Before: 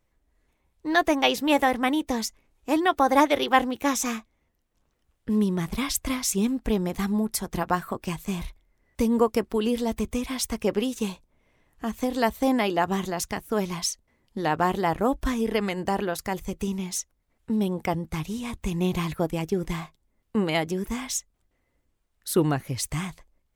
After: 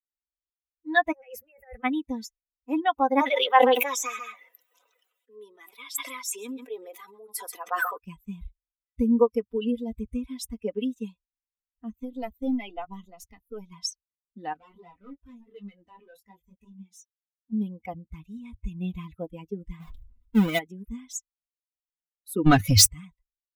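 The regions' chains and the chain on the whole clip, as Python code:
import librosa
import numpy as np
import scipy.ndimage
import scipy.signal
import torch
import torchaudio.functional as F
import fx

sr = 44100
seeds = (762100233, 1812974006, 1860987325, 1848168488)

y = fx.chain(x, sr, fx.peak_eq(hz=70.0, db=5.0, octaves=1.7),
    fx.over_compress(threshold_db=-29.0, ratio=-1.0),
    fx.fixed_phaser(hz=1000.0, stages=6), at=(1.12, 1.84))
y = fx.chain(y, sr, fx.highpass(hz=400.0, slope=24),
    fx.echo_single(ms=137, db=-17.5),
    fx.sustainer(db_per_s=20.0), at=(3.21, 7.98))
y = fx.chain(y, sr, fx.halfwave_gain(db=-7.0),
    fx.notch(hz=1700.0, q=5.9), at=(11.9, 13.72))
y = fx.chain(y, sr, fx.highpass(hz=97.0, slope=6),
    fx.overload_stage(gain_db=27.0),
    fx.detune_double(cents=15), at=(14.53, 17.53))
y = fx.chain(y, sr, fx.halfwave_hold(),
    fx.sustainer(db_per_s=37.0), at=(19.8, 20.59))
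y = fx.chain(y, sr, fx.peak_eq(hz=5200.0, db=9.5, octaves=1.1),
    fx.leveller(passes=5), at=(22.46, 22.9))
y = fx.bin_expand(y, sr, power=2.0)
y = fx.peak_eq(y, sr, hz=100.0, db=13.0, octaves=0.49)
y = y + 0.64 * np.pad(y, (int(4.0 * sr / 1000.0), 0))[:len(y)]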